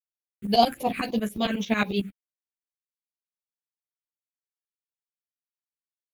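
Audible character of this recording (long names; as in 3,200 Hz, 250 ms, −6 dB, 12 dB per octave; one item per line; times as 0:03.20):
a quantiser's noise floor 10 bits, dither none
phaser sweep stages 4, 3.8 Hz, lowest notch 800–1,600 Hz
tremolo saw up 11 Hz, depth 95%
a shimmering, thickened sound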